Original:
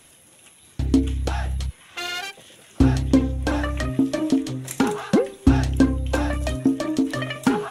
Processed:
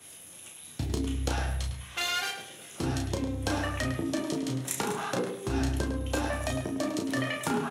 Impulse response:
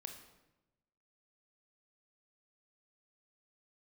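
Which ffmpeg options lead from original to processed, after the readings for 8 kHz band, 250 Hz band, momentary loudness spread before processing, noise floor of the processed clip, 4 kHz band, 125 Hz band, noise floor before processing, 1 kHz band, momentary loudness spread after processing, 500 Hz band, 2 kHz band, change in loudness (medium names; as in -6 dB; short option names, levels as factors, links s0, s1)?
0.0 dB, -11.5 dB, 10 LU, -48 dBFS, -2.0 dB, -8.5 dB, -52 dBFS, -4.5 dB, 7 LU, -7.0 dB, -3.5 dB, -8.5 dB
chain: -filter_complex "[0:a]acompressor=threshold=0.0447:ratio=1.5,asoftclip=type=hard:threshold=0.266,flanger=delay=9.8:depth=6.7:regen=54:speed=0.29:shape=triangular,acrossover=split=290|3000[s0][s1][s2];[s1]acompressor=threshold=0.0282:ratio=6[s3];[s0][s3][s2]amix=inputs=3:normalize=0,highpass=f=82:w=0.5412,highpass=f=82:w=1.3066,highshelf=f=4300:g=7,afftfilt=real='re*lt(hypot(re,im),0.355)':imag='im*lt(hypot(re,im),0.355)':win_size=1024:overlap=0.75,asplit=2[s4][s5];[s5]adelay=33,volume=0.562[s6];[s4][s6]amix=inputs=2:normalize=0,asplit=2[s7][s8];[s8]adelay=104,lowpass=f=3700:p=1,volume=0.447,asplit=2[s9][s10];[s10]adelay=104,lowpass=f=3700:p=1,volume=0.31,asplit=2[s11][s12];[s12]adelay=104,lowpass=f=3700:p=1,volume=0.31,asplit=2[s13][s14];[s14]adelay=104,lowpass=f=3700:p=1,volume=0.31[s15];[s7][s9][s11][s13][s15]amix=inputs=5:normalize=0,adynamicequalizer=threshold=0.00355:dfrequency=2400:dqfactor=0.7:tfrequency=2400:tqfactor=0.7:attack=5:release=100:ratio=0.375:range=2:mode=cutabove:tftype=highshelf,volume=1.26"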